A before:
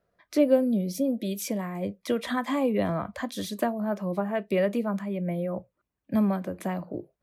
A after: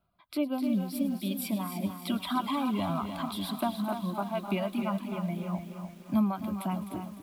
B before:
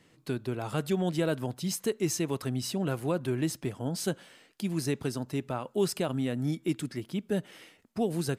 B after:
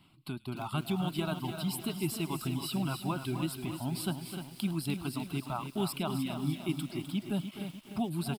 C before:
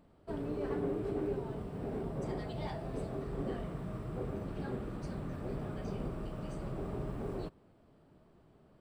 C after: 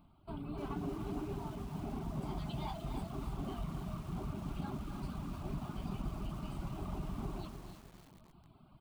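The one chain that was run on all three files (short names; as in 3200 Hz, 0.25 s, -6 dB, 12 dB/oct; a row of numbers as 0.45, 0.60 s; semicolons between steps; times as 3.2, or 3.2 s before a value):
fixed phaser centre 1800 Hz, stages 6; in parallel at +1.5 dB: compressor 5:1, threshold -48 dBFS; on the sum: echo 0.255 s -9 dB; AGC gain up to 4.5 dB; reverb removal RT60 1.1 s; on a send: thin delay 0.105 s, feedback 83%, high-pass 2900 Hz, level -16 dB; on the sum: dynamic EQ 110 Hz, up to -6 dB, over -48 dBFS, Q 3.6; lo-fi delay 0.3 s, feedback 55%, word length 8-bit, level -8 dB; gain -4 dB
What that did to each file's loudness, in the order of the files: -4.0, -3.0, -2.5 LU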